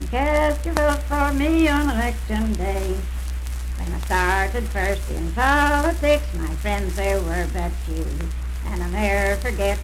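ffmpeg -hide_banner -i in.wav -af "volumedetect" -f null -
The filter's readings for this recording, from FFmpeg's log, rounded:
mean_volume: -21.1 dB
max_volume: -4.2 dB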